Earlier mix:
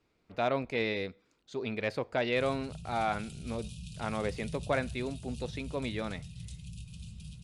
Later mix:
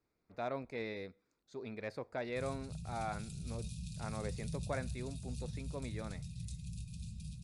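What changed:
speech -9.0 dB; master: add peaking EQ 3 kHz -13.5 dB 0.37 oct

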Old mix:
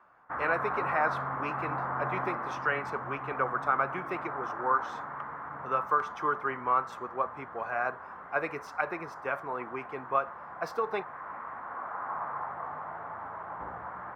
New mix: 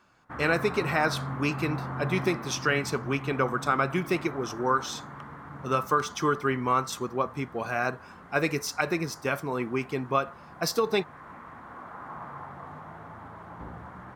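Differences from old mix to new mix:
background -7.0 dB; master: remove three-band isolator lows -16 dB, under 520 Hz, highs -23 dB, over 2 kHz

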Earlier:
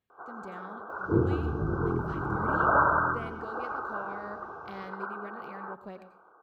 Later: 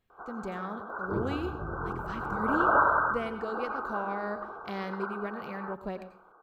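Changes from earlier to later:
speech +7.0 dB; second sound -9.5 dB; master: remove high-pass 69 Hz

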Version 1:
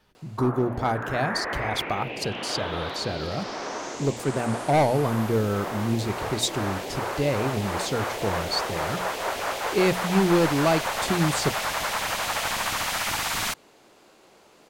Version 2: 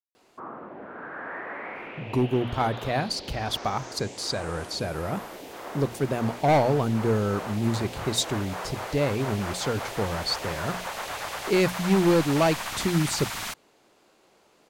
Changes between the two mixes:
speech: entry +1.75 s; background -6.0 dB

